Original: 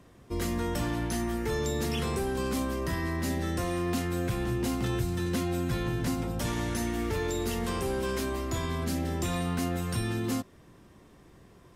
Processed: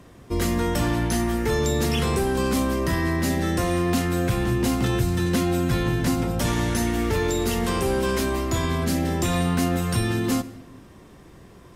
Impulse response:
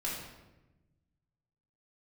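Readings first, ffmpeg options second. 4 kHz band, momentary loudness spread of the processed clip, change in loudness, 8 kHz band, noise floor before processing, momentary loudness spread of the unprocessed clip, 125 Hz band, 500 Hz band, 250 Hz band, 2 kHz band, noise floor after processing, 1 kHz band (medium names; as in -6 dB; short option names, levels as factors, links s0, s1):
+7.5 dB, 2 LU, +7.5 dB, +7.5 dB, -56 dBFS, 2 LU, +7.5 dB, +7.5 dB, +7.5 dB, +7.5 dB, -48 dBFS, +7.5 dB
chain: -filter_complex "[0:a]asplit=2[s0][s1];[1:a]atrim=start_sample=2205,afade=t=out:st=0.44:d=0.01,atrim=end_sample=19845,adelay=67[s2];[s1][s2]afir=irnorm=-1:irlink=0,volume=0.0944[s3];[s0][s3]amix=inputs=2:normalize=0,volume=2.37"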